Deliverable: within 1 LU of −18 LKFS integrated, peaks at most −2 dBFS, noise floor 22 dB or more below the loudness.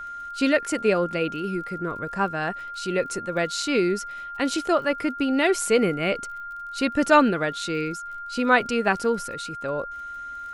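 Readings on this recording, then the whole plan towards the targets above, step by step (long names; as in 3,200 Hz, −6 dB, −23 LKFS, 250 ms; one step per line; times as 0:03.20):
crackle rate 34 per second; interfering tone 1,400 Hz; level of the tone −33 dBFS; integrated loudness −24.5 LKFS; sample peak −5.0 dBFS; target loudness −18.0 LKFS
→ click removal
notch filter 1,400 Hz, Q 30
level +6.5 dB
brickwall limiter −2 dBFS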